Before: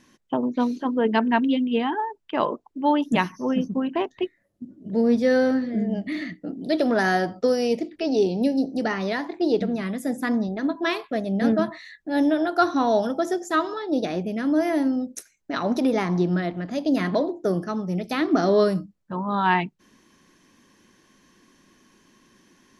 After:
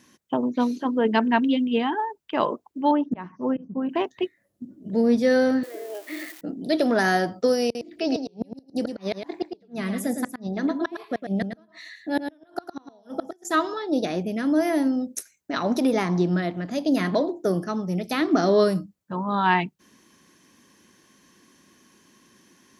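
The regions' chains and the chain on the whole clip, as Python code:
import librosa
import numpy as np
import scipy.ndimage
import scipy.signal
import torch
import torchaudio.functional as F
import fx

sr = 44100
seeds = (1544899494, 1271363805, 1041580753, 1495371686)

y = fx.chain(x, sr, fx.lowpass(hz=1400.0, slope=12),
    fx.auto_swell(attack_ms=302.0), at=(2.91, 3.89))
y = fx.chain(y, sr, fx.crossing_spikes(level_db=-26.5),
    fx.steep_highpass(hz=320.0, slope=72),
    fx.high_shelf(hz=3700.0, db=-11.5), at=(5.63, 6.41))
y = fx.chain(y, sr, fx.gate_flip(shuts_db=-15.0, range_db=-35),
    fx.echo_single(ms=109, db=-7.5), at=(7.64, 13.45))
y = scipy.signal.sosfilt(scipy.signal.butter(2, 67.0, 'highpass', fs=sr, output='sos'), y)
y = fx.high_shelf(y, sr, hz=7400.0, db=8.5)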